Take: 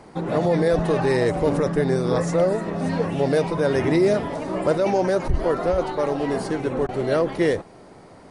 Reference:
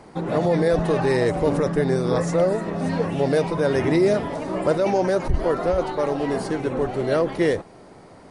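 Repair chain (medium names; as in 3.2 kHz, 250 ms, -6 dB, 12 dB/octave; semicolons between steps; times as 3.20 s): clip repair -10.5 dBFS; interpolate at 6.87 s, 16 ms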